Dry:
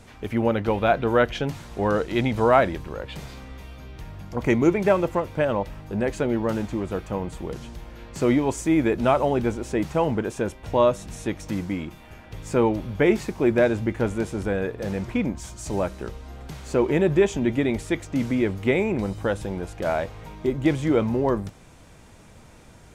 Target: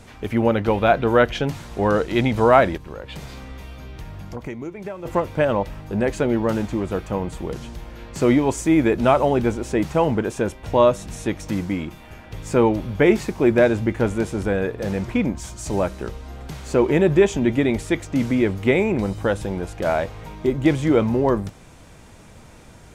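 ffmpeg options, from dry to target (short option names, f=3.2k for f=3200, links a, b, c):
-filter_complex "[0:a]asplit=3[a][b][c];[a]afade=t=out:st=2.76:d=0.02[d];[b]acompressor=threshold=-33dB:ratio=8,afade=t=in:st=2.76:d=0.02,afade=t=out:st=5.05:d=0.02[e];[c]afade=t=in:st=5.05:d=0.02[f];[d][e][f]amix=inputs=3:normalize=0,volume=3.5dB"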